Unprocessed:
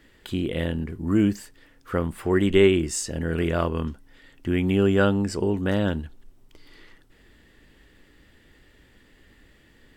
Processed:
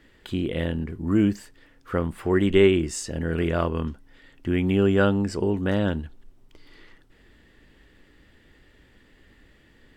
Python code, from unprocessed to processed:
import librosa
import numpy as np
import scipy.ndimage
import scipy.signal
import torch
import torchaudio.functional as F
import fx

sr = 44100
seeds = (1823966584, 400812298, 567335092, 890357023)

y = fx.high_shelf(x, sr, hz=6700.0, db=-7.0)